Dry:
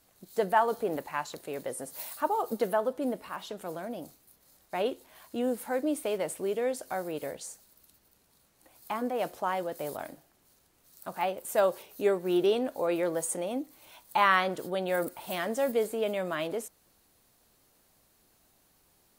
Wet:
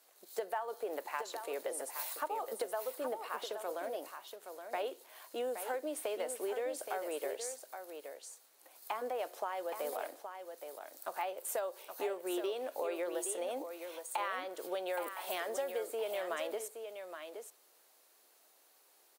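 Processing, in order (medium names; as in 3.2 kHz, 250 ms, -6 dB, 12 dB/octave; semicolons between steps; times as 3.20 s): block-companded coder 7-bit; high-pass 390 Hz 24 dB/octave; compression 10:1, threshold -34 dBFS, peak gain reduction 16.5 dB; on a send: delay 821 ms -8 dB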